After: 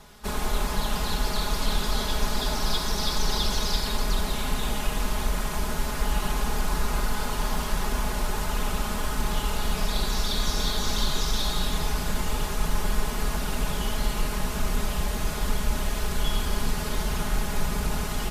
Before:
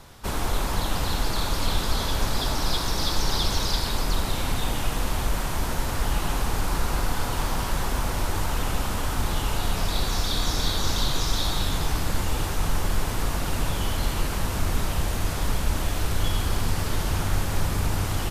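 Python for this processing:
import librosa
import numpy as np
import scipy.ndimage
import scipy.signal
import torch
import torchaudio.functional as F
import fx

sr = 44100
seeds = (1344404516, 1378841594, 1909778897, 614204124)

y = x + 0.77 * np.pad(x, (int(4.8 * sr / 1000.0), 0))[:len(x)]
y = fx.cheby_harmonics(y, sr, harmonics=(5, 7), levels_db=(-30, -33), full_scale_db=-6.0)
y = y * 10.0 ** (-3.5 / 20.0)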